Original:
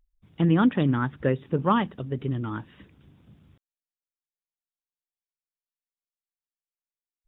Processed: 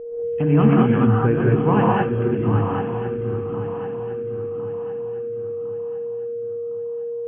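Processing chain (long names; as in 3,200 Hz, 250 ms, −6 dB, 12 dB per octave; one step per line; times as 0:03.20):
pitch shift by two crossfaded delay taps −2 semitones
in parallel at −2 dB: brickwall limiter −19 dBFS, peak gain reduction 8.5 dB
on the sum: harmonic generator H 4 −35 dB, 5 −43 dB, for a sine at −8 dBFS
steady tone 470 Hz −31 dBFS
high-frequency loss of the air 300 metres
on a send: feedback echo with a long and a short gap by turns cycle 1,057 ms, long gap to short 3 to 1, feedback 41%, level −10 dB
on the sum: reverb whose tail is shaped and stops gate 240 ms rising, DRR −4 dB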